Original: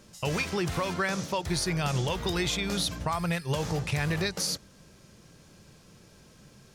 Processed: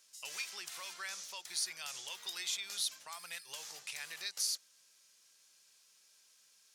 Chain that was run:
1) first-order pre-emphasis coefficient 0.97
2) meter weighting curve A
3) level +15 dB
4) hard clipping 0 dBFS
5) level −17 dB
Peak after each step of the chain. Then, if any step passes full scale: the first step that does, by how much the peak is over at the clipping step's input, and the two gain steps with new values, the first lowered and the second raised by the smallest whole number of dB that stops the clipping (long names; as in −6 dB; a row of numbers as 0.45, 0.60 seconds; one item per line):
−19.5, −20.0, −5.0, −5.0, −22.0 dBFS
no step passes full scale